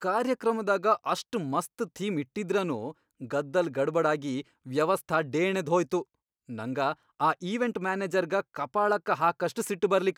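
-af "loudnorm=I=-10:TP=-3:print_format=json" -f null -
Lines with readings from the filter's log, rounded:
"input_i" : "-28.6",
"input_tp" : "-10.7",
"input_lra" : "1.8",
"input_thresh" : "-38.8",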